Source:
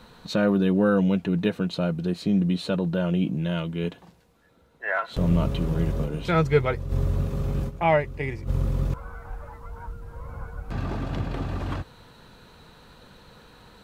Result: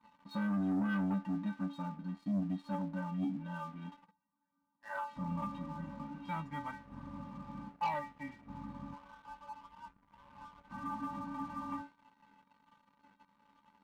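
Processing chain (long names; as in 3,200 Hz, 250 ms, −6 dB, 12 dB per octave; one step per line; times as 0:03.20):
pair of resonant band-passes 440 Hz, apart 2.3 octaves
stiff-string resonator 280 Hz, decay 0.34 s, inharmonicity 0.008
leveller curve on the samples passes 2
level +11.5 dB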